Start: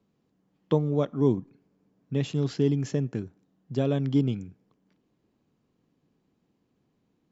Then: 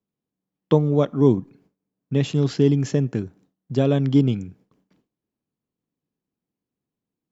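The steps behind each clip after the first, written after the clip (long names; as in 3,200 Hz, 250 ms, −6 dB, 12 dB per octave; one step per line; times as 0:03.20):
noise gate with hold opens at −56 dBFS
level +6.5 dB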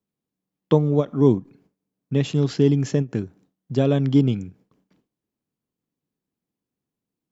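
every ending faded ahead of time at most 330 dB per second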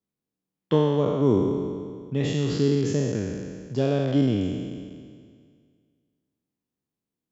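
peak hold with a decay on every bin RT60 2.00 s
level −6 dB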